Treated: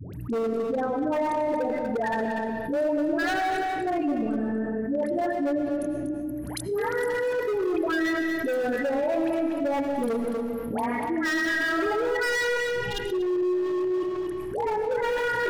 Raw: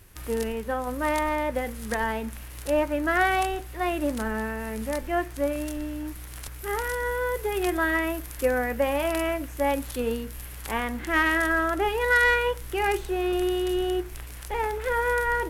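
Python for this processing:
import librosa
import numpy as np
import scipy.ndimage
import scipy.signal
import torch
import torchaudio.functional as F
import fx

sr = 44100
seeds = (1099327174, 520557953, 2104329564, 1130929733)

p1 = fx.envelope_sharpen(x, sr, power=3.0)
p2 = scipy.signal.sosfilt(scipy.signal.butter(4, 130.0, 'highpass', fs=sr, output='sos'), p1)
p3 = fx.peak_eq(p2, sr, hz=440.0, db=6.5, octaves=0.28)
p4 = fx.hum_notches(p3, sr, base_hz=50, count=8)
p5 = fx.dispersion(p4, sr, late='highs', ms=137.0, hz=770.0)
p6 = np.clip(p5, -10.0 ** (-22.0 / 20.0), 10.0 ** (-22.0 / 20.0))
p7 = fx.spec_box(p6, sr, start_s=12.65, length_s=0.41, low_hz=260.0, high_hz=2800.0, gain_db=-21)
p8 = 10.0 ** (-23.0 / 20.0) * (np.abs((p7 / 10.0 ** (-23.0 / 20.0) + 3.0) % 4.0 - 2.0) - 1.0)
p9 = fx.small_body(p8, sr, hz=(300.0, 610.0), ring_ms=45, db=7)
p10 = p9 + fx.echo_single(p9, sr, ms=241, db=-9.5, dry=0)
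p11 = fx.rev_freeverb(p10, sr, rt60_s=1.3, hf_ratio=0.7, predelay_ms=65, drr_db=8.0)
p12 = fx.env_flatten(p11, sr, amount_pct=70)
y = F.gain(torch.from_numpy(p12), -5.0).numpy()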